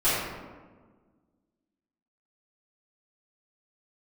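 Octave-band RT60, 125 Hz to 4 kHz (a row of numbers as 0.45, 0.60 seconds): 1.8, 2.1, 1.6, 1.3, 1.0, 0.70 seconds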